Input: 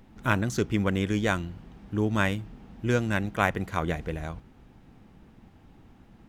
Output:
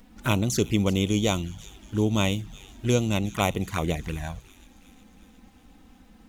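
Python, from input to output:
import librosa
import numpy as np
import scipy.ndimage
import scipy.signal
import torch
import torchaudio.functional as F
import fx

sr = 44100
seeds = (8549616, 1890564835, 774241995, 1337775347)

y = fx.env_flanger(x, sr, rest_ms=4.5, full_db=-23.5)
y = fx.high_shelf(y, sr, hz=3600.0, db=11.0)
y = fx.echo_wet_highpass(y, sr, ms=362, feedback_pct=60, hz=3300.0, wet_db=-15.5)
y = y * librosa.db_to_amplitude(3.0)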